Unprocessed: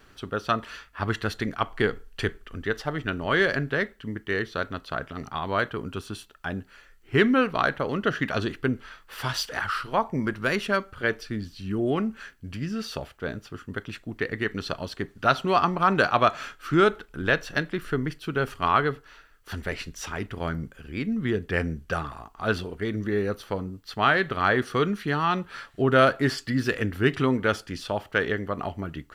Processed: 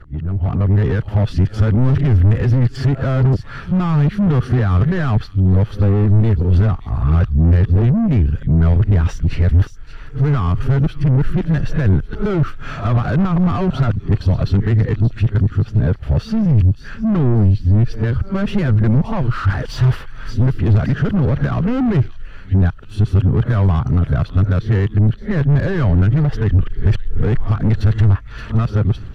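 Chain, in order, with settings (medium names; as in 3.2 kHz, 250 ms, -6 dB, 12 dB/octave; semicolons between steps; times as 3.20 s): reverse the whole clip; peak limiter -19 dBFS, peak gain reduction 11 dB; peaking EQ 110 Hz +11 dB 1.6 oct; feedback echo behind a high-pass 573 ms, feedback 43%, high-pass 3.9 kHz, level -9.5 dB; saturation -29 dBFS, distortion -7 dB; RIAA curve playback; level rider gain up to 11 dB; trim -1.5 dB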